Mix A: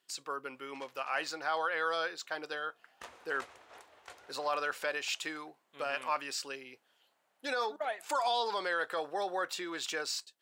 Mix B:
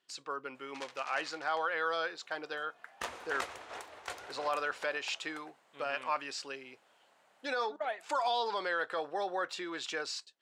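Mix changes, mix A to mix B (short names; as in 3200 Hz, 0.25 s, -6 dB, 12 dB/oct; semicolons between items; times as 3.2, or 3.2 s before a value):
speech: add air absorption 65 m; background +9.5 dB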